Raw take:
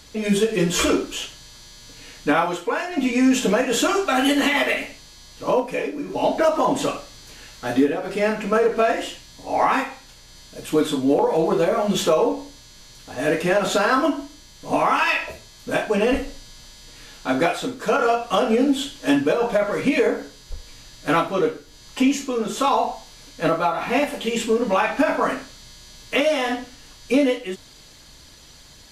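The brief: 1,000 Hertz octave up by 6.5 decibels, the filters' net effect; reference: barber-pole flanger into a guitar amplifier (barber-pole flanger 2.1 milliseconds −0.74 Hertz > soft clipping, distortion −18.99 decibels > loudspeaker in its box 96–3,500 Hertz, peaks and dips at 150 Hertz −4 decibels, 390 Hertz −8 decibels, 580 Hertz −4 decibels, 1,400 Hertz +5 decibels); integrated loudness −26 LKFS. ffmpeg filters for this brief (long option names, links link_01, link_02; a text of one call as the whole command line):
ffmpeg -i in.wav -filter_complex "[0:a]equalizer=frequency=1000:width_type=o:gain=7.5,asplit=2[link_01][link_02];[link_02]adelay=2.1,afreqshift=-0.74[link_03];[link_01][link_03]amix=inputs=2:normalize=1,asoftclip=threshold=-11dB,highpass=96,equalizer=frequency=150:width_type=q:width=4:gain=-4,equalizer=frequency=390:width_type=q:width=4:gain=-8,equalizer=frequency=580:width_type=q:width=4:gain=-4,equalizer=frequency=1400:width_type=q:width=4:gain=5,lowpass=frequency=3500:width=0.5412,lowpass=frequency=3500:width=1.3066,volume=-2dB" out.wav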